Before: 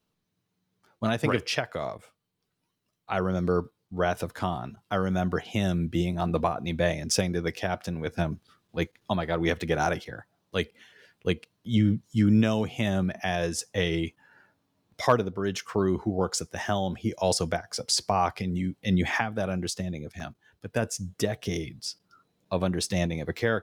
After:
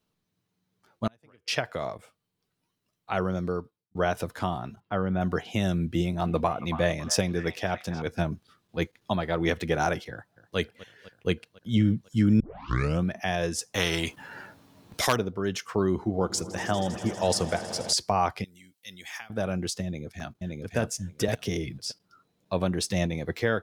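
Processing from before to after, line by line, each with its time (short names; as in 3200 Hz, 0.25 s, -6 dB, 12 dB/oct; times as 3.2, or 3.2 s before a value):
1.07–1.48 flipped gate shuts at -23 dBFS, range -34 dB
3.2–3.95 fade out
4.8–5.21 air absorption 360 m
5.77–8.02 delay with a stepping band-pass 0.277 s, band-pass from 1100 Hz, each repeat 0.7 oct, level -7 dB
10.11–10.58 echo throw 0.25 s, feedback 75%, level -17 dB
12.4 tape start 0.64 s
13.74–15.16 spectral compressor 2:1
15.9–17.93 swelling echo 80 ms, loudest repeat 5, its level -18 dB
18.44–19.3 pre-emphasis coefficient 0.97
19.84–20.77 echo throw 0.57 s, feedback 10%, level -1 dB
21.28–21.78 three-band squash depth 100%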